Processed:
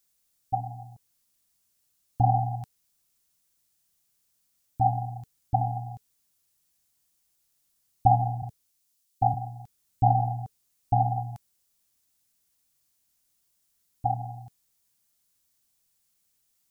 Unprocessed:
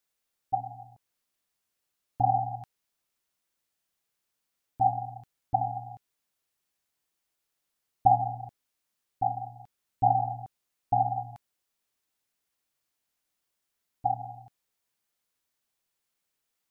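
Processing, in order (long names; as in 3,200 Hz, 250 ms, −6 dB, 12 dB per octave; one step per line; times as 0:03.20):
bass and treble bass +10 dB, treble +11 dB
notch filter 440 Hz, Q 14
0:08.42–0:09.34: multiband upward and downward expander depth 40%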